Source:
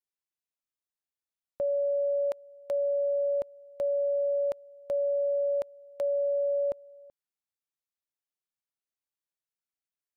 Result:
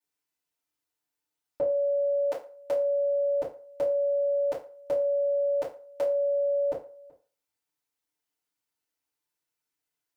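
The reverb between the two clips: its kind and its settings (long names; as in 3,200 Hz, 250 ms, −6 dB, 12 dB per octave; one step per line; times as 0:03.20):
feedback delay network reverb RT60 0.38 s, low-frequency decay 0.75×, high-frequency decay 0.75×, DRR −9 dB
level −1.5 dB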